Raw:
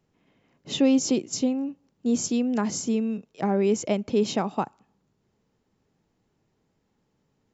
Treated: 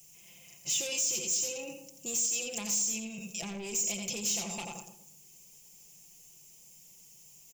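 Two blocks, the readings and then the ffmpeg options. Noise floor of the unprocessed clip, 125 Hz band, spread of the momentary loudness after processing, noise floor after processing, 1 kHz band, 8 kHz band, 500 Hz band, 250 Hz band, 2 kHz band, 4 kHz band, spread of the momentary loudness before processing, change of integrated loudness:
-73 dBFS, -13.0 dB, 13 LU, -56 dBFS, -15.0 dB, n/a, -16.0 dB, -19.5 dB, -1.0 dB, -0.5 dB, 10 LU, -5.5 dB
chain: -filter_complex "[0:a]acrossover=split=4200[a][b];[b]acompressor=threshold=-37dB:ratio=4:attack=1:release=60[c];[a][c]amix=inputs=2:normalize=0,asplit=2[d][e];[e]aecho=0:1:86|172:0.398|0.0597[f];[d][f]amix=inputs=2:normalize=0,aexciter=amount=14.7:drive=5.9:freq=6k,equalizer=f=270:w=2.8:g=-12.5,bandreject=f=60:t=h:w=6,bandreject=f=120:t=h:w=6,bandreject=f=180:t=h:w=6,bandreject=f=240:t=h:w=6,bandreject=f=300:t=h:w=6,bandreject=f=360:t=h:w=6,bandreject=f=420:t=h:w=6,bandreject=f=480:t=h:w=6,bandreject=f=540:t=h:w=6,acompressor=threshold=-26dB:ratio=4,aecho=1:1:5.8:0.77,asoftclip=type=tanh:threshold=-29dB,alimiter=level_in=12.5dB:limit=-24dB:level=0:latency=1:release=19,volume=-12.5dB,highshelf=f=2k:t=q:w=3:g=9,asplit=2[g][h];[h]adelay=119,lowpass=f=860:p=1,volume=-8dB,asplit=2[i][j];[j]adelay=119,lowpass=f=860:p=1,volume=0.44,asplit=2[k][l];[l]adelay=119,lowpass=f=860:p=1,volume=0.44,asplit=2[m][n];[n]adelay=119,lowpass=f=860:p=1,volume=0.44,asplit=2[o][p];[p]adelay=119,lowpass=f=860:p=1,volume=0.44[q];[i][k][m][o][q]amix=inputs=5:normalize=0[r];[g][r]amix=inputs=2:normalize=0"

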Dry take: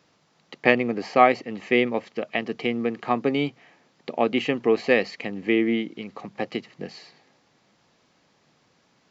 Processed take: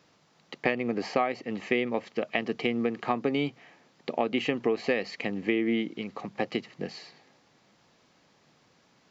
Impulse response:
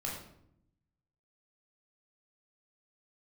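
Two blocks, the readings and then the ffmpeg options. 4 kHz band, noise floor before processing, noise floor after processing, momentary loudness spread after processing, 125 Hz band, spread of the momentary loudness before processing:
-4.0 dB, -65 dBFS, -65 dBFS, 10 LU, -3.5 dB, 15 LU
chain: -af "acompressor=threshold=-22dB:ratio=10"

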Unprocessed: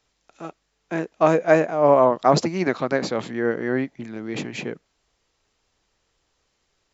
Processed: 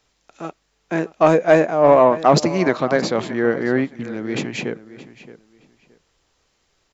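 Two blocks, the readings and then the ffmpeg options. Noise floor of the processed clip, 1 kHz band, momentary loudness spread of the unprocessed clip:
-67 dBFS, +3.0 dB, 18 LU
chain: -filter_complex "[0:a]acontrast=42,asplit=2[a][b];[b]adelay=621,lowpass=f=4.4k:p=1,volume=-16dB,asplit=2[c][d];[d]adelay=621,lowpass=f=4.4k:p=1,volume=0.22[e];[a][c][e]amix=inputs=3:normalize=0,volume=-1dB"

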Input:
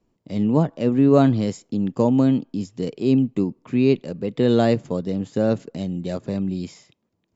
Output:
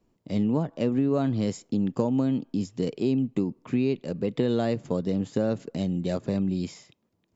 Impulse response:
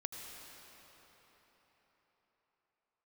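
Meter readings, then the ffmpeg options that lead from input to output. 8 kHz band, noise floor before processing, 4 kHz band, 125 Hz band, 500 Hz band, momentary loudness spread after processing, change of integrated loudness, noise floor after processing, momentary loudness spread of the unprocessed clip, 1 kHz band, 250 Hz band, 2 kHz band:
n/a, -72 dBFS, -5.0 dB, -5.5 dB, -6.5 dB, 5 LU, -6.0 dB, -72 dBFS, 12 LU, -8.0 dB, -5.5 dB, -6.0 dB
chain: -af "acompressor=threshold=-21dB:ratio=6"

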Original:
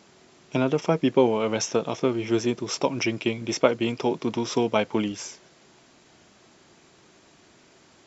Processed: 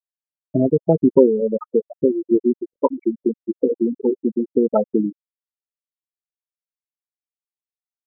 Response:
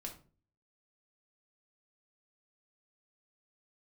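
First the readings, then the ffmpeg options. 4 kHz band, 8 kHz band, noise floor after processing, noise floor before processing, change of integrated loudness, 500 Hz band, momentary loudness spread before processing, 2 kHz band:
under -40 dB, n/a, under -85 dBFS, -57 dBFS, +5.0 dB, +6.0 dB, 6 LU, under -35 dB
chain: -af "acrusher=samples=10:mix=1:aa=0.000001:lfo=1:lforange=6:lforate=2.8,afftfilt=real='re*gte(hypot(re,im),0.282)':imag='im*gte(hypot(re,im),0.282)':win_size=1024:overlap=0.75,afftfilt=real='re*lt(b*sr/1024,490*pow(3700/490,0.5+0.5*sin(2*PI*2.1*pts/sr)))':imag='im*lt(b*sr/1024,490*pow(3700/490,0.5+0.5*sin(2*PI*2.1*pts/sr)))':win_size=1024:overlap=0.75,volume=7.5dB"

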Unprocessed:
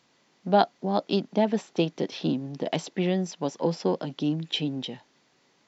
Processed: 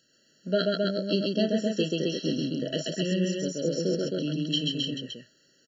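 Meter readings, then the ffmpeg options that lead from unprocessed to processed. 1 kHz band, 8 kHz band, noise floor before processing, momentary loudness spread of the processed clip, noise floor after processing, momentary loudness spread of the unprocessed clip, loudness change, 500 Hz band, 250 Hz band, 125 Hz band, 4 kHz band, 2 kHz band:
under -15 dB, n/a, -66 dBFS, 5 LU, -65 dBFS, 8 LU, -0.5 dB, -0.5 dB, 0.0 dB, 0.0 dB, +4.0 dB, +0.5 dB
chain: -af "highshelf=f=3.3k:g=12,aecho=1:1:32.07|134.1|265.3:0.355|0.794|0.708,afftfilt=real='re*eq(mod(floor(b*sr/1024/660),2),0)':imag='im*eq(mod(floor(b*sr/1024/660),2),0)':win_size=1024:overlap=0.75,volume=-4dB"

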